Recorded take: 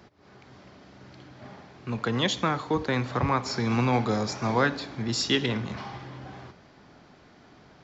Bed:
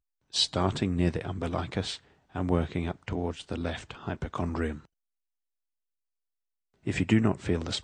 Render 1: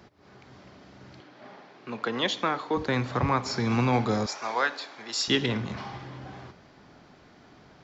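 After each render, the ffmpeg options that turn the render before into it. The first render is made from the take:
-filter_complex "[0:a]asettb=1/sr,asplit=3[a][b][c];[a]atrim=end=1.204[d];[b]atrim=start=1.2:end=2.77,asetpts=PTS-STARTPTS,afade=t=in:d=0.004:c=qsin,afade=t=out:st=1.566:d=0.004:c=qsin,highpass=280,lowpass=5.4k[e];[c]atrim=start=2.766[f];[d][e]acrossfade=d=0.004:c1=hsin:c2=qsin[g];[g][f]acrossfade=d=0.004:c1=qsin:c2=hsin,asettb=1/sr,asplit=3[h][i][j];[h]atrim=end=4.264[k];[i]atrim=start=4.26:end=5.28,asetpts=PTS-STARTPTS,afade=t=in:d=0.004:c=qsin,afade=t=out:st=1.016:d=0.004:c=qsin,highpass=640[l];[j]atrim=start=5.276[m];[k][l]acrossfade=d=0.004:c1=hsin:c2=qsin[n];[n][m]acrossfade=d=0.004:c1=qsin:c2=hsin"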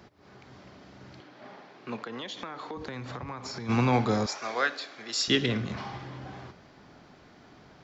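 -filter_complex "[0:a]asplit=3[a][b][c];[a]afade=t=out:st=1.96:d=0.02[d];[b]acompressor=threshold=-34dB:ratio=10:attack=3.2:release=140:knee=1:detection=peak,afade=t=in:st=1.96:d=0.02,afade=t=out:st=3.68:d=0.02[e];[c]afade=t=in:st=3.68:d=0.02[f];[d][e][f]amix=inputs=3:normalize=0,asettb=1/sr,asplit=3[g][h][i];[g]atrim=end=4.394[j];[h]atrim=start=4.39:end=5.72,asetpts=PTS-STARTPTS,afade=t=in:d=0.004:c=qsin,afade=t=out:st=1.326:d=0.004:c=qsin,equalizer=f=910:t=o:w=0.29:g=-12[k];[i]atrim=start=5.716[l];[j][k]acrossfade=d=0.004:c1=hsin:c2=qsin[m];[m][l]acrossfade=d=0.004:c1=qsin:c2=hsin"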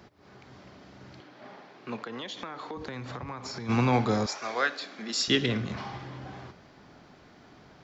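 -filter_complex "[0:a]asettb=1/sr,asplit=3[a][b][c];[a]atrim=end=4.824[d];[b]atrim=start=4.82:end=5.25,asetpts=PTS-STARTPTS,afade=t=in:d=0.004:c=qsin,afade=t=out:st=0.426:d=0.004:c=qsin,highpass=f=200:t=q:w=4.9[e];[c]atrim=start=5.246[f];[d][e]acrossfade=d=0.004:c1=hsin:c2=qsin[g];[g][f]acrossfade=d=0.004:c1=qsin:c2=hsin"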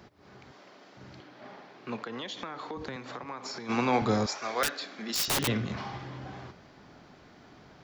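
-filter_complex "[0:a]asettb=1/sr,asplit=3[a][b][c];[a]atrim=end=0.514[d];[b]atrim=start=0.51:end=0.97,asetpts=PTS-STARTPTS,afade=t=in:d=0.004:c=qsin,afade=t=out:st=0.456:d=0.004:c=qsin,highpass=350[e];[c]atrim=start=0.966[f];[d][e]acrossfade=d=0.004:c1=hsin:c2=qsin[g];[g][f]acrossfade=d=0.004:c1=qsin:c2=hsin,asettb=1/sr,asplit=3[h][i][j];[h]atrim=end=2.964[k];[i]atrim=start=2.96:end=4.02,asetpts=PTS-STARTPTS,afade=t=in:d=0.004:c=qsin,afade=t=out:st=1.056:d=0.004:c=qsin,highpass=250[l];[j]atrim=start=4.016[m];[k][l]acrossfade=d=0.004:c1=hsin:c2=qsin[n];[n][m]acrossfade=d=0.004:c1=qsin:c2=hsin,asettb=1/sr,asplit=3[o][p][q];[o]atrim=end=4.634[r];[p]atrim=start=4.63:end=5.48,asetpts=PTS-STARTPTS,afade=t=in:d=0.004:c=qsin,afade=t=out:st=0.846:d=0.004:c=qsin,aeval=exprs='(mod(12.6*val(0)+1,2)-1)/12.6':c=same[s];[q]atrim=start=5.476[t];[r][s]acrossfade=d=0.004:c1=hsin:c2=qsin[u];[u][t]acrossfade=d=0.004:c1=qsin:c2=hsin"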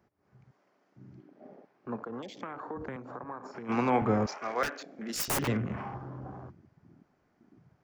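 -af "afwtdn=0.00891,equalizer=f=3.8k:t=o:w=0.94:g=-11.5"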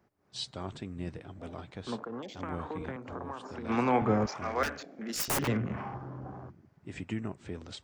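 -filter_complex "[1:a]volume=-12.5dB[a];[0:a][a]amix=inputs=2:normalize=0"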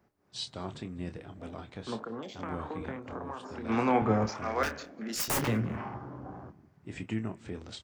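-filter_complex "[0:a]asplit=2[a][b];[b]adelay=27,volume=-9dB[c];[a][c]amix=inputs=2:normalize=0,asplit=2[d][e];[e]adelay=196,lowpass=f=4.3k:p=1,volume=-24dB,asplit=2[f][g];[g]adelay=196,lowpass=f=4.3k:p=1,volume=0.37[h];[d][f][h]amix=inputs=3:normalize=0"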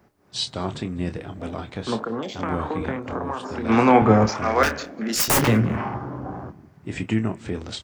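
-af "volume=11dB"

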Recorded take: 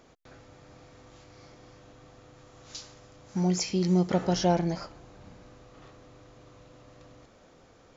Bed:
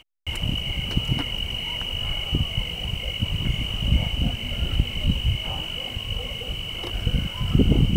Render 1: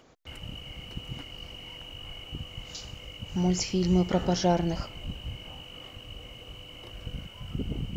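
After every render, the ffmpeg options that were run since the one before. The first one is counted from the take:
-filter_complex "[1:a]volume=-15dB[a];[0:a][a]amix=inputs=2:normalize=0"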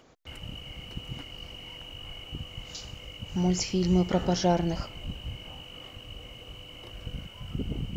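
-af anull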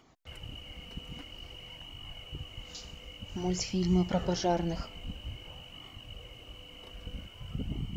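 -af "flanger=delay=0.9:depth=3.5:regen=-43:speed=0.51:shape=sinusoidal"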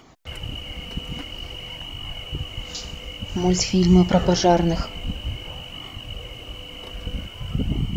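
-af "volume=12dB"

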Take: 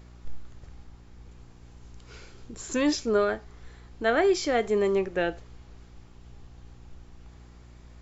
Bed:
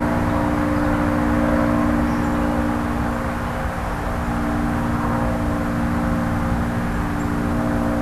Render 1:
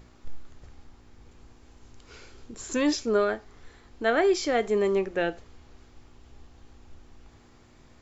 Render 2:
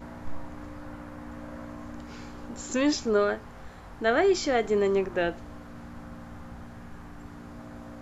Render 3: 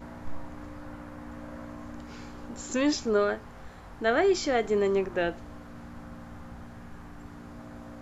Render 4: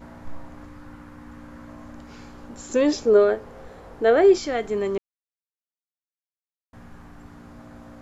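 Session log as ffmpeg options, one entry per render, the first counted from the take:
-af "bandreject=f=60:t=h:w=4,bandreject=f=120:t=h:w=4,bandreject=f=180:t=h:w=4"
-filter_complex "[1:a]volume=-23dB[a];[0:a][a]amix=inputs=2:normalize=0"
-af "volume=-1dB"
-filter_complex "[0:a]asettb=1/sr,asplit=3[a][b][c];[a]atrim=end=0.654[d];[b]atrim=start=0.65:end=1.68,asetpts=PTS-STARTPTS,afade=t=in:d=0.004:c=qsin,afade=t=out:st=1.026:d=0.004:c=qsin,equalizer=f=630:t=o:w=0.45:g=-9[e];[c]atrim=start=1.676[f];[d][e]acrossfade=d=0.004:c1=hsin:c2=qsin[g];[g][f]acrossfade=d=0.004:c1=qsin:c2=hsin,asettb=1/sr,asplit=3[h][i][j];[h]atrim=end=2.734[k];[i]atrim=start=2.73:end=4.38,asetpts=PTS-STARTPTS,afade=t=in:d=0.004:c=qsin,afade=t=out:st=1.646:d=0.004:c=qsin,equalizer=f=470:w=1.5:g=12[l];[j]atrim=start=4.376[m];[k][l]acrossfade=d=0.004:c1=hsin:c2=qsin[n];[n][m]acrossfade=d=0.004:c1=qsin:c2=hsin,asplit=3[o][p][q];[o]atrim=end=4.98,asetpts=PTS-STARTPTS,afade=t=out:st=4.976:d=0.004:c=hsin[r];[p]atrim=start=4.98:end=6.73,asetpts=PTS-STARTPTS,volume=0[s];[q]atrim=start=6.73,asetpts=PTS-STARTPTS,afade=t=in:d=0.004:c=hsin[t];[r][s][t]concat=n=3:v=0:a=1"

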